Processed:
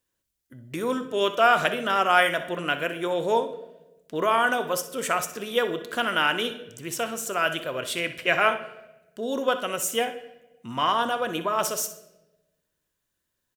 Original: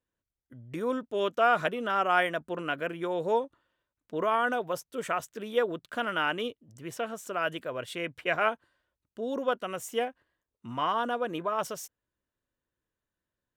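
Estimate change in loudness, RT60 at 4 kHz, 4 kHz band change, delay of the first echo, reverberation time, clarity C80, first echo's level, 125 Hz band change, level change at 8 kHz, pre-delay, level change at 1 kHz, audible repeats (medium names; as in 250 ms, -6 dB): +5.0 dB, 0.80 s, +9.5 dB, 63 ms, 1.0 s, 15.0 dB, -13.5 dB, +4.0 dB, +13.5 dB, 3 ms, +5.0 dB, 1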